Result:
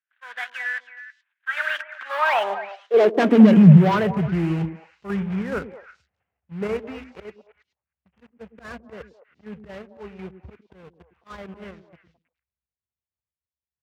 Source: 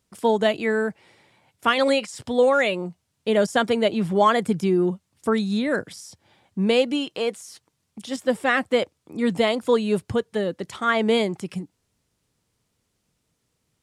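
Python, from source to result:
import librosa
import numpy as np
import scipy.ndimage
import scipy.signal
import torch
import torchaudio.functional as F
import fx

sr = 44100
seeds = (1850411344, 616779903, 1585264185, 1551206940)

p1 = fx.cvsd(x, sr, bps=16000)
p2 = fx.doppler_pass(p1, sr, speed_mps=41, closest_m=22.0, pass_at_s=3.26)
p3 = fx.peak_eq(p2, sr, hz=300.0, db=-10.0, octaves=0.4)
p4 = fx.leveller(p3, sr, passes=3)
p5 = fx.auto_swell(p4, sr, attack_ms=118.0)
p6 = fx.level_steps(p5, sr, step_db=13)
p7 = p5 + F.gain(torch.from_numpy(p6), 2.5).numpy()
p8 = fx.filter_sweep_highpass(p7, sr, from_hz=1600.0, to_hz=66.0, start_s=1.89, end_s=4.41, q=7.2)
p9 = p8 + fx.echo_stepped(p8, sr, ms=107, hz=270.0, octaves=1.4, feedback_pct=70, wet_db=-7.0, dry=0)
y = F.gain(torch.from_numpy(p9), -7.0).numpy()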